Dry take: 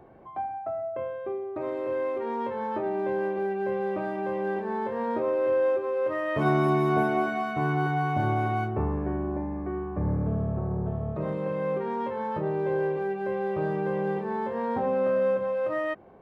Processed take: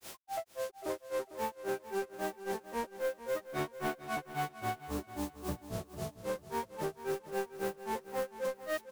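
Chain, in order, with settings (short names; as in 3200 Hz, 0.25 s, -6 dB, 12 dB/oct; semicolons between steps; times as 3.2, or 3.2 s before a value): HPF 42 Hz 24 dB/oct; tone controls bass -6 dB, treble +9 dB; in parallel at +2.5 dB: limiter -24.5 dBFS, peak gain reduction 11 dB; on the sum: requantised 6-bit, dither triangular; hard clip -23 dBFS, distortion -10 dB; time stretch by phase-locked vocoder 0.55×; grains 0.178 s, grains 3.7/s, spray 11 ms, pitch spread up and down by 0 st; feedback echo 0.45 s, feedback 24%, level -13.5 dB; gain -6 dB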